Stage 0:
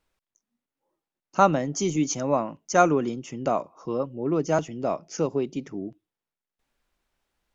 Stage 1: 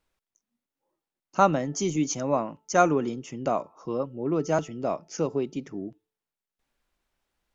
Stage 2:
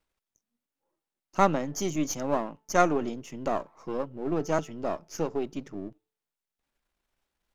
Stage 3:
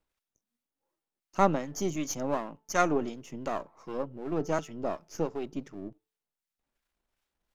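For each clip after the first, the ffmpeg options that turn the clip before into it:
-af "bandreject=f=438.7:t=h:w=4,bandreject=f=877.4:t=h:w=4,bandreject=f=1316.1:t=h:w=4,bandreject=f=1754.8:t=h:w=4,volume=0.841"
-af "aeval=exprs='if(lt(val(0),0),0.447*val(0),val(0))':c=same"
-filter_complex "[0:a]acrossover=split=1100[s0][s1];[s0]aeval=exprs='val(0)*(1-0.5/2+0.5/2*cos(2*PI*2.7*n/s))':c=same[s2];[s1]aeval=exprs='val(0)*(1-0.5/2-0.5/2*cos(2*PI*2.7*n/s))':c=same[s3];[s2][s3]amix=inputs=2:normalize=0"

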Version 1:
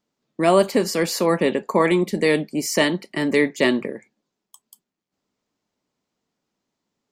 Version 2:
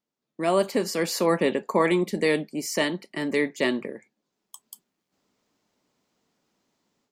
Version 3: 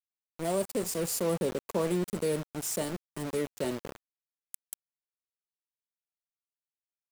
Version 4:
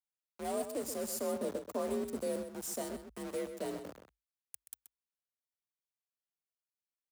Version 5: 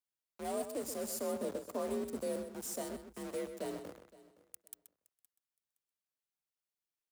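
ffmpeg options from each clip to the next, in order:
-af "lowshelf=f=130:g=-4.5,dynaudnorm=f=320:g=3:m=5.62,volume=0.355"
-filter_complex "[0:a]firequalizer=gain_entry='entry(110,0);entry(250,-14);entry(470,-9);entry(1700,-26);entry(8100,-1)':delay=0.05:min_phase=1,asplit=2[s0][s1];[s1]alimiter=level_in=1.68:limit=0.0631:level=0:latency=1:release=12,volume=0.596,volume=0.794[s2];[s0][s2]amix=inputs=2:normalize=0,aeval=exprs='val(0)*gte(abs(val(0)),0.0188)':c=same"
-filter_complex "[0:a]asplit=2[s0][s1];[s1]adelay=128.3,volume=0.355,highshelf=f=4000:g=-2.89[s2];[s0][s2]amix=inputs=2:normalize=0,afreqshift=52,adynamicequalizer=threshold=0.00251:dfrequency=2600:dqfactor=1.1:tfrequency=2600:tqfactor=1.1:attack=5:release=100:ratio=0.375:range=2.5:mode=cutabove:tftype=bell,volume=0.473"
-af "aecho=1:1:517|1034:0.0944|0.017,volume=0.841"

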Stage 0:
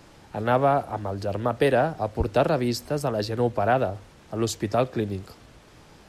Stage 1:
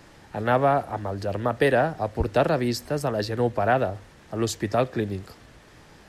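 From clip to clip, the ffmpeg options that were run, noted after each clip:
-af "equalizer=f=1800:t=o:w=0.32:g=6"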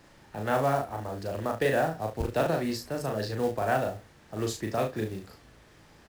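-filter_complex "[0:a]acrusher=bits=5:mode=log:mix=0:aa=0.000001,asplit=2[s0][s1];[s1]aecho=0:1:37|72:0.668|0.224[s2];[s0][s2]amix=inputs=2:normalize=0,volume=0.447"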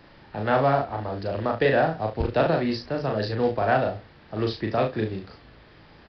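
-af "aresample=11025,aresample=44100,volume=1.78"

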